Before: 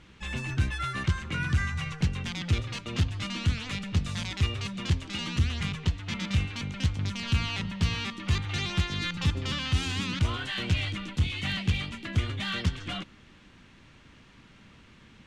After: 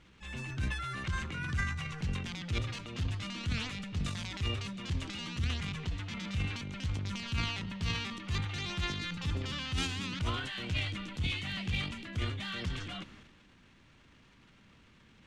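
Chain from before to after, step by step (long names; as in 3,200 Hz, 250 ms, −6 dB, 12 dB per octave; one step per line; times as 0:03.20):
transient designer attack −4 dB, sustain +8 dB
level −7 dB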